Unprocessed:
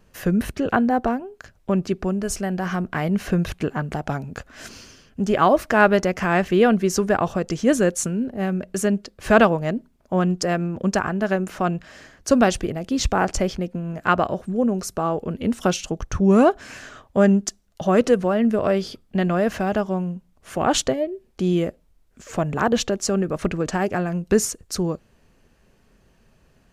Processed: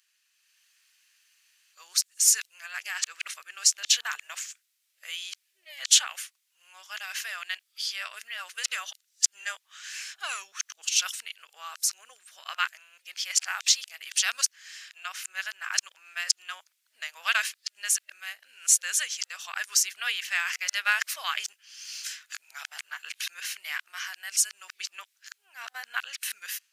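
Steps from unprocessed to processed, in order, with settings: reverse the whole clip; Bessel high-pass 2.9 kHz, order 4; level rider gain up to 7 dB

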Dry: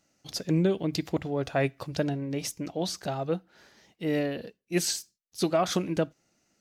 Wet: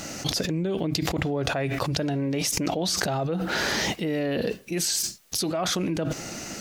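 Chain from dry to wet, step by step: 2.03–2.72 s: bass shelf 370 Hz -4.5 dB; level flattener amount 100%; trim -5 dB

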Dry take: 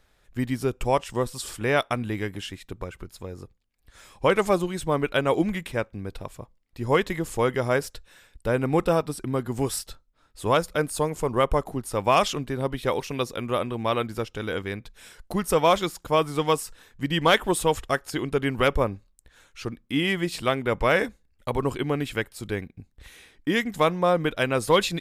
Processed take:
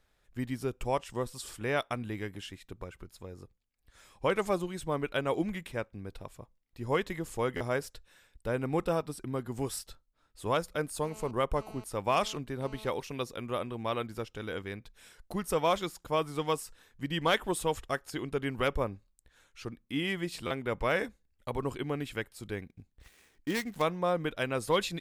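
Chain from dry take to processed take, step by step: 11.03–12.90 s: mobile phone buzz -43 dBFS; 22.67–23.82 s: dead-time distortion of 0.11 ms; buffer glitch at 7.56/20.46 s, samples 512, times 3; trim -8 dB

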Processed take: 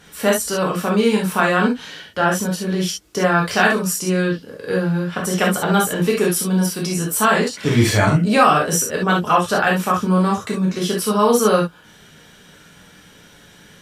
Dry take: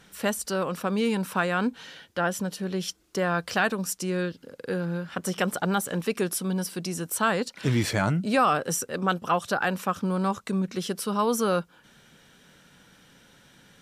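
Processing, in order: gated-style reverb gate 90 ms flat, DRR -2.5 dB; trim +5 dB

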